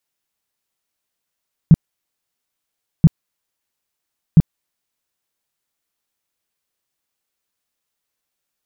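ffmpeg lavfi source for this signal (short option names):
-f lavfi -i "aevalsrc='0.75*sin(2*PI*161*mod(t,1.33))*lt(mod(t,1.33),5/161)':d=3.99:s=44100"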